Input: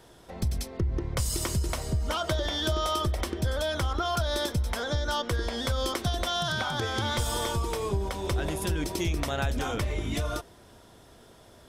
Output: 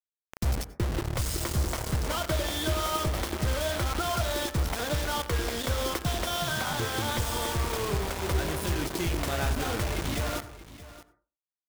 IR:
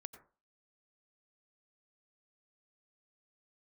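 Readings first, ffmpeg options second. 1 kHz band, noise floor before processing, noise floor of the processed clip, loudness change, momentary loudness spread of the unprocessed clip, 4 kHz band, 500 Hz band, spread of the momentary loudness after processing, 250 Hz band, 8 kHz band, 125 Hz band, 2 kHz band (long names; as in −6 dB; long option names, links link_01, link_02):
0.0 dB, −54 dBFS, below −85 dBFS, 0.0 dB, 3 LU, −1.5 dB, −0.5 dB, 3 LU, 0.0 dB, +1.5 dB, −0.5 dB, +1.0 dB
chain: -filter_complex "[0:a]highshelf=frequency=3400:gain=-6,flanger=delay=6.2:depth=8.7:regen=72:speed=1:shape=sinusoidal,acrusher=bits=5:mix=0:aa=0.000001,aecho=1:1:625:0.15,asplit=2[link_01][link_02];[1:a]atrim=start_sample=2205[link_03];[link_02][link_03]afir=irnorm=-1:irlink=0,volume=8.5dB[link_04];[link_01][link_04]amix=inputs=2:normalize=0,volume=-4dB"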